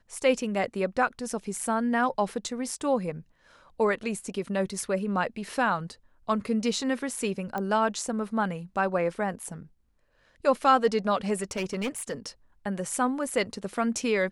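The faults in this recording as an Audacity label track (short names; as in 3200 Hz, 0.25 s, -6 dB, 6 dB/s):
7.580000	7.580000	pop -19 dBFS
11.420000	12.270000	clipped -26 dBFS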